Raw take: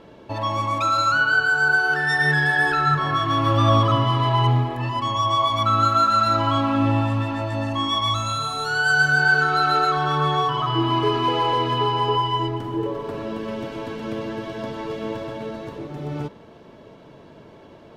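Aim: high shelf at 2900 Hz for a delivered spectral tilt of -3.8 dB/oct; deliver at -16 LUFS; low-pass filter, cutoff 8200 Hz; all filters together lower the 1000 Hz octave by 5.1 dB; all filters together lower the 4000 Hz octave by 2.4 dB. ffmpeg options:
-af "lowpass=8.2k,equalizer=f=1k:t=o:g=-7.5,highshelf=f=2.9k:g=7,equalizer=f=4k:t=o:g=-8,volume=7dB"

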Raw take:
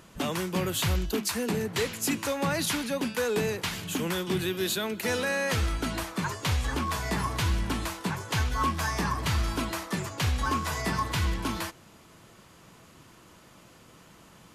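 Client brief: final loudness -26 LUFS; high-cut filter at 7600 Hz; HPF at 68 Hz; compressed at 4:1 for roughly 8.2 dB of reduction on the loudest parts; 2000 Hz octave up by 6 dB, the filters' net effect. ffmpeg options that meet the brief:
-af "highpass=68,lowpass=7.6k,equalizer=f=2k:t=o:g=7.5,acompressor=threshold=-32dB:ratio=4,volume=8dB"

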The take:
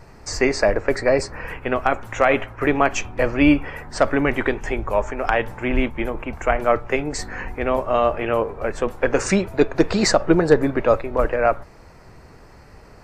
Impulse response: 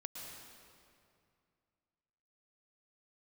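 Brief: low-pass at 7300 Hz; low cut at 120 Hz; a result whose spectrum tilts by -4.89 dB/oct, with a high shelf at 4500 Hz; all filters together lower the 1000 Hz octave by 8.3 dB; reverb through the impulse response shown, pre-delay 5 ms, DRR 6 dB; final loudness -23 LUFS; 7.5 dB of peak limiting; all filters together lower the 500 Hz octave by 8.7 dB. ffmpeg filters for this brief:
-filter_complex "[0:a]highpass=120,lowpass=7.3k,equalizer=f=500:t=o:g=-8.5,equalizer=f=1k:t=o:g=-8.5,highshelf=f=4.5k:g=-4,alimiter=limit=-14.5dB:level=0:latency=1,asplit=2[a][b];[1:a]atrim=start_sample=2205,adelay=5[c];[b][c]afir=irnorm=-1:irlink=0,volume=-4dB[d];[a][d]amix=inputs=2:normalize=0,volume=5dB"

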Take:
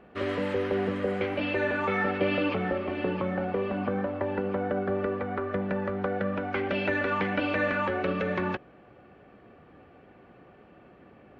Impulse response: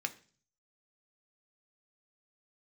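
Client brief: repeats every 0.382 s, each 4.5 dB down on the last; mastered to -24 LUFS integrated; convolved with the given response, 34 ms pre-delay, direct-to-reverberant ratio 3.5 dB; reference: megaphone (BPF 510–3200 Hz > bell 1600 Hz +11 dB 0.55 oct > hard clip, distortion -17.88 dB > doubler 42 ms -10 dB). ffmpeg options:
-filter_complex "[0:a]aecho=1:1:382|764|1146|1528|1910|2292|2674|3056|3438:0.596|0.357|0.214|0.129|0.0772|0.0463|0.0278|0.0167|0.01,asplit=2[a][b];[1:a]atrim=start_sample=2205,adelay=34[c];[b][c]afir=irnorm=-1:irlink=0,volume=-5.5dB[d];[a][d]amix=inputs=2:normalize=0,highpass=510,lowpass=3.2k,equalizer=f=1.6k:t=o:w=0.55:g=11,asoftclip=type=hard:threshold=-18dB,asplit=2[e][f];[f]adelay=42,volume=-10dB[g];[e][g]amix=inputs=2:normalize=0,volume=1dB"

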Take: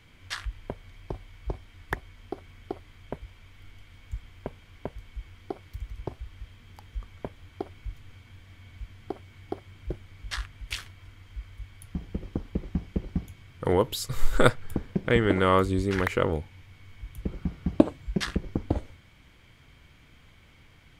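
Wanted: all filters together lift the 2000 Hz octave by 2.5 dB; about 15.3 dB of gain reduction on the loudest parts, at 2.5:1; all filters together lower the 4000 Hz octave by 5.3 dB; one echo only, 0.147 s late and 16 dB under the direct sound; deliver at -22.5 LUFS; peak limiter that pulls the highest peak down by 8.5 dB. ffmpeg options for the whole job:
-af "equalizer=f=2k:t=o:g=5,equalizer=f=4k:t=o:g=-9,acompressor=threshold=-35dB:ratio=2.5,alimiter=level_in=0.5dB:limit=-24dB:level=0:latency=1,volume=-0.5dB,aecho=1:1:147:0.158,volume=20dB"

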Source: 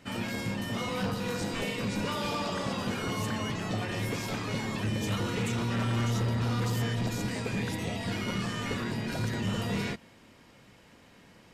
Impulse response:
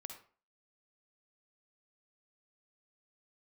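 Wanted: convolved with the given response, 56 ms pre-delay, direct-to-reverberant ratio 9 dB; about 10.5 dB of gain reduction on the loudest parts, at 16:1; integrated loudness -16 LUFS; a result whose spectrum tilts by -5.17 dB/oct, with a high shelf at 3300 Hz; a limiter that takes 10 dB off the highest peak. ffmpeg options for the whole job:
-filter_complex "[0:a]highshelf=f=3.3k:g=-5.5,acompressor=threshold=-37dB:ratio=16,alimiter=level_in=14dB:limit=-24dB:level=0:latency=1,volume=-14dB,asplit=2[a][b];[1:a]atrim=start_sample=2205,adelay=56[c];[b][c]afir=irnorm=-1:irlink=0,volume=-4.5dB[d];[a][d]amix=inputs=2:normalize=0,volume=28.5dB"

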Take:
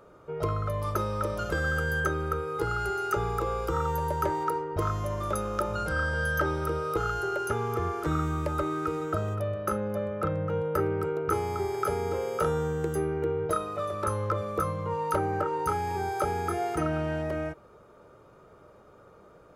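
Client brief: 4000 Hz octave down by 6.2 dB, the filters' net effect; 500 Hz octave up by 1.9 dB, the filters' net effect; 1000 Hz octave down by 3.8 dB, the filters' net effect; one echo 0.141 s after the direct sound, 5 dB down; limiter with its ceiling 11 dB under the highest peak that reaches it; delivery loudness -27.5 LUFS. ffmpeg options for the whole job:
-af "equalizer=f=500:t=o:g=3.5,equalizer=f=1k:t=o:g=-5.5,equalizer=f=4k:t=o:g=-8.5,alimiter=level_in=2dB:limit=-24dB:level=0:latency=1,volume=-2dB,aecho=1:1:141:0.562,volume=5.5dB"

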